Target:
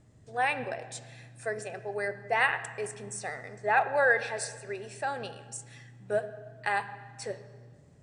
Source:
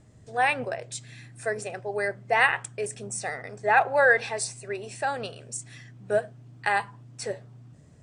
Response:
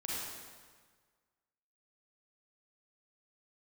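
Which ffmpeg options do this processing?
-filter_complex "[0:a]asplit=2[a][b];[1:a]atrim=start_sample=2205,lowpass=4.7k[c];[b][c]afir=irnorm=-1:irlink=0,volume=-13.5dB[d];[a][d]amix=inputs=2:normalize=0,volume=-5.5dB"

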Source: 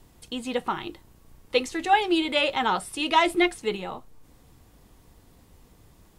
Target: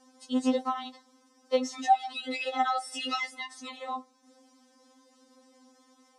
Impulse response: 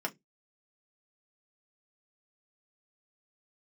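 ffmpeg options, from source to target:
-filter_complex "[0:a]asettb=1/sr,asplit=3[a][b][c];[a]atrim=end=2.154[d];[b]atrim=start=2.15:end=3.39,asetpts=PTS-STARTPTS,afade=t=in:d=0.004:c=qsin,afade=t=out:st=1.236:d=0.004:c=qsin,aecho=1:1:2.4:0.63,atrim=end_sample=54684[e];[c]atrim=start=3.386[f];[d][e]acrossfade=d=0.004:c1=hsin:c2=qsin[g];[g][f]acrossfade=d=0.004:c1=qsin:c2=hsin,acompressor=threshold=-24dB:ratio=10,highpass=f=140:w=0.5412,highpass=f=140:w=1.3066,equalizer=f=600:t=q:w=4:g=5,equalizer=f=1.1k:t=q:w=4:g=7,equalizer=f=2.7k:t=q:w=4:g=-6,equalizer=f=5.5k:t=q:w=4:g=9,lowpass=f=8.9k:w=0.5412,lowpass=f=8.9k:w=1.3066,afftfilt=real='re*3.46*eq(mod(b,12),0)':imag='im*3.46*eq(mod(b,12),0)':win_size=2048:overlap=0.75"

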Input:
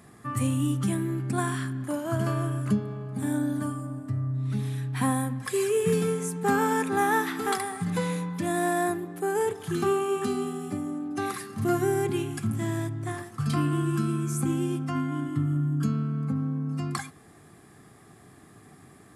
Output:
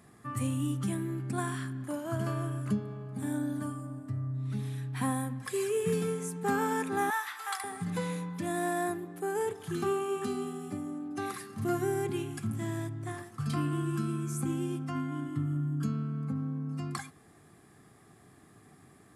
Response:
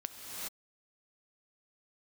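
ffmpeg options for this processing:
-filter_complex "[0:a]asettb=1/sr,asplit=3[a][b][c];[a]atrim=end=7.104[d];[b]atrim=start=7.1:end=7.64,asetpts=PTS-STARTPTS,afade=t=in:d=0.004:c=qsin,afade=t=out:st=0.536:d=0.004:c=qsin,highpass=f=810:w=0.5412,highpass=f=810:w=1.3066[e];[c]atrim=start=7.636[f];[d][e]acrossfade=d=0.004:c1=hsin:c2=qsin[g];[g][f]acrossfade=d=0.004:c1=qsin:c2=hsin,volume=-5.5dB"

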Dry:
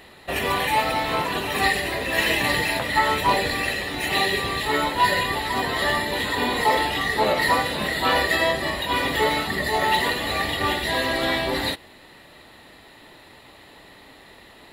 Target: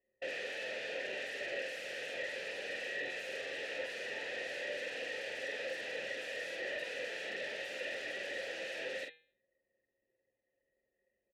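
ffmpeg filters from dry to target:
-filter_complex "[0:a]anlmdn=39.8,bandreject=f=160.6:t=h:w=4,bandreject=f=321.2:t=h:w=4,bandreject=f=481.8:t=h:w=4,bandreject=f=642.4:t=h:w=4,bandreject=f=803:t=h:w=4,bandreject=f=963.6:t=h:w=4,bandreject=f=1.1242k:t=h:w=4,bandreject=f=1.2848k:t=h:w=4,bandreject=f=1.4454k:t=h:w=4,bandreject=f=1.606k:t=h:w=4,bandreject=f=1.7666k:t=h:w=4,bandreject=f=1.9272k:t=h:w=4,bandreject=f=2.0878k:t=h:w=4,bandreject=f=2.2484k:t=h:w=4,bandreject=f=2.409k:t=h:w=4,bandreject=f=2.5696k:t=h:w=4,bandreject=f=2.7302k:t=h:w=4,bandreject=f=2.8908k:t=h:w=4,bandreject=f=3.0514k:t=h:w=4,bandreject=f=3.212k:t=h:w=4,bandreject=f=3.3726k:t=h:w=4,bandreject=f=3.5332k:t=h:w=4,bandreject=f=3.6938k:t=h:w=4,bandreject=f=3.8544k:t=h:w=4,bandreject=f=4.015k:t=h:w=4,bandreject=f=4.1756k:t=h:w=4,bandreject=f=4.3362k:t=h:w=4,atempo=1.3,aresample=11025,asoftclip=type=tanh:threshold=-18.5dB,aresample=44100,lowpass=f=3.5k:t=q:w=1.6,aeval=exprs='0.0422*(abs(mod(val(0)/0.0422+3,4)-2)-1)':c=same,asplit=3[a][b][c];[a]bandpass=f=530:t=q:w=8,volume=0dB[d];[b]bandpass=f=1.84k:t=q:w=8,volume=-6dB[e];[c]bandpass=f=2.48k:t=q:w=8,volume=-9dB[f];[d][e][f]amix=inputs=3:normalize=0,asplit=2[g][h];[h]adelay=46,volume=-4.5dB[i];[g][i]amix=inputs=2:normalize=0,volume=3dB"

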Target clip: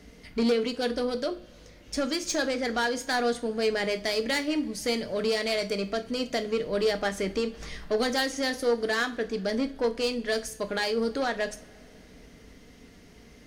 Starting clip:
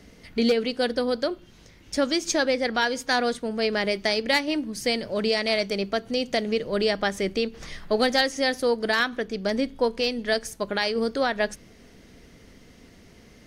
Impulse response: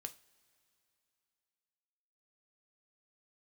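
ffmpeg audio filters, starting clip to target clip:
-filter_complex "[0:a]asoftclip=type=tanh:threshold=-19.5dB[a];[1:a]atrim=start_sample=2205[b];[a][b]afir=irnorm=-1:irlink=0,volume=3dB"

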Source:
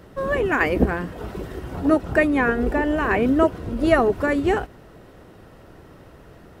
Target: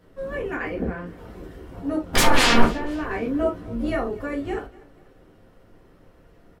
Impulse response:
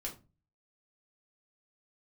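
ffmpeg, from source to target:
-filter_complex "[0:a]asettb=1/sr,asplit=3[a][b][c];[a]atrim=end=0.544[d];[b]atrim=start=0.54:end=1.06,asetpts=PTS-STARTPTS,afade=t=in:d=0.004:c=qsin,afade=t=out:st=0.516:d=0.004:c=qsin,highshelf=f=5.9k:g=-10[e];[c]atrim=start=1.056[f];[d][e]acrossfade=d=0.004:c1=hsin:c2=qsin[g];[g][f]acrossfade=d=0.004:c1=qsin:c2=hsin,asplit=3[h][i][j];[h]afade=t=out:st=2.13:d=0.02[k];[i]aeval=exprs='0.531*sin(PI/2*8.91*val(0)/0.531)':c=same,afade=t=in:st=2.13:d=0.02,afade=t=out:st=2.64:d=0.02[l];[j]afade=t=in:st=2.64:d=0.02[m];[k][l][m]amix=inputs=3:normalize=0,asettb=1/sr,asplit=3[n][o][p];[n]atrim=end=3.324[q];[o]atrim=start=3.32:end=3.9,asetpts=PTS-STARTPTS,afade=t=in:d=0.004:c=qsin,afade=t=out:st=0.576:d=0.004:c=qsin,asplit=2[r][s];[s]adelay=17,volume=-2.5dB[t];[r][t]amix=inputs=2:normalize=0,atrim=end_sample=25578[u];[p]atrim=start=3.896[v];[q][u]acrossfade=d=0.004:c1=hsin:c2=qsin[w];[w][v]acrossfade=d=0.004:c1=qsin:c2=hsin,aecho=1:1:244|488|732:0.0794|0.0342|0.0147[x];[1:a]atrim=start_sample=2205,atrim=end_sample=3528[y];[x][y]afir=irnorm=-1:irlink=0,volume=-8dB"

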